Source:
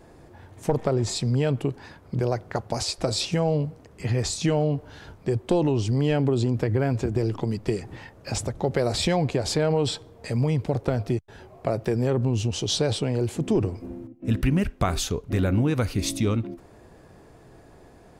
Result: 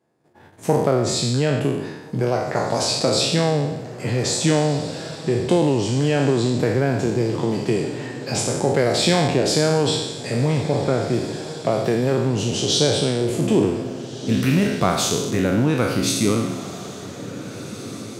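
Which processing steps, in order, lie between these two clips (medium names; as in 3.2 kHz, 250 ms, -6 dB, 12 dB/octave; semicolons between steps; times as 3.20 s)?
spectral sustain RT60 1.01 s; 10.62–11.13 s: elliptic low-pass 2.4 kHz; gate -43 dBFS, range -23 dB; high-pass 120 Hz 24 dB/octave; echo that smears into a reverb 1792 ms, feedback 41%, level -13.5 dB; trim +3 dB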